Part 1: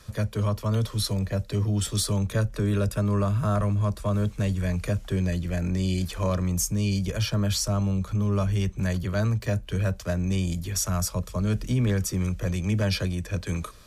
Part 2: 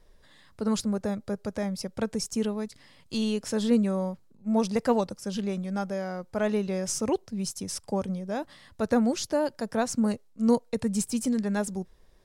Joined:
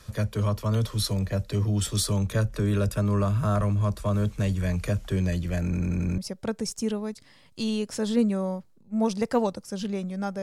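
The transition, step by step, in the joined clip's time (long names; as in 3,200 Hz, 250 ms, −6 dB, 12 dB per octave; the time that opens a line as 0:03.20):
part 1
0:05.64: stutter in place 0.09 s, 6 plays
0:06.18: continue with part 2 from 0:01.72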